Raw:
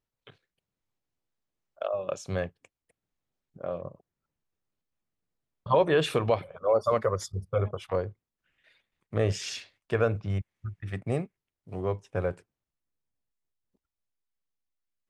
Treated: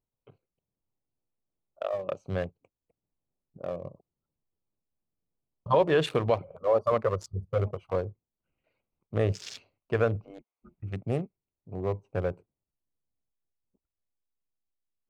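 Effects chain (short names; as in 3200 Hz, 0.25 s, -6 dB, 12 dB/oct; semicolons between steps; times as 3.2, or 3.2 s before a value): Wiener smoothing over 25 samples; 10.24–10.77 spectral gate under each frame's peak -20 dB weak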